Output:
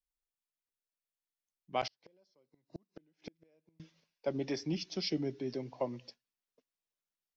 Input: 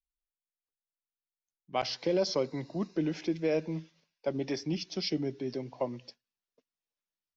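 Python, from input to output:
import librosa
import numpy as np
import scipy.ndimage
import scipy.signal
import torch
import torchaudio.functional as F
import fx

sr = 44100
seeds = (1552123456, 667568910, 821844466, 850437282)

y = fx.gate_flip(x, sr, shuts_db=-29.0, range_db=-39, at=(1.87, 3.8))
y = y * 10.0 ** (-2.5 / 20.0)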